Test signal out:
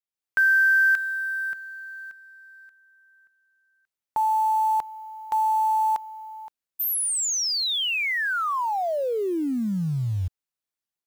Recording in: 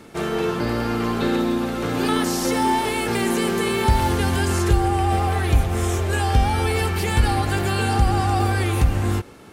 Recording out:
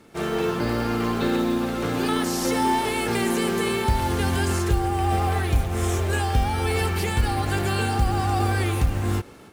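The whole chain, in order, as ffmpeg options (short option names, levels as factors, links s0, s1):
-af "dynaudnorm=f=110:g=3:m=2.24,acrusher=bits=7:mode=log:mix=0:aa=0.000001,volume=0.398"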